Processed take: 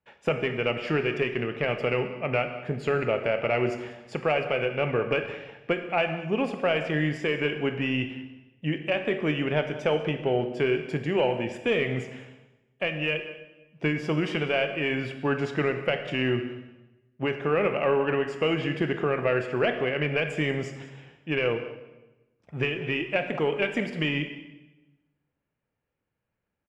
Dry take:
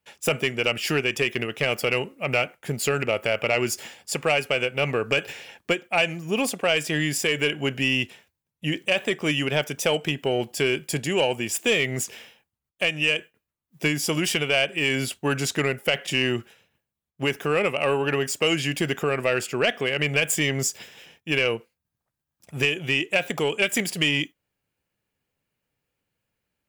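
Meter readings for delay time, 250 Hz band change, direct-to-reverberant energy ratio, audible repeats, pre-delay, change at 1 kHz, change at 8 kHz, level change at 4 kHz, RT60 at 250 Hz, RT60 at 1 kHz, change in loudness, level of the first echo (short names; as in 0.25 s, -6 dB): 0.191 s, -0.5 dB, 7.0 dB, 1, 19 ms, -1.0 dB, under -25 dB, -9.5 dB, 1.2 s, 0.95 s, -3.5 dB, -18.0 dB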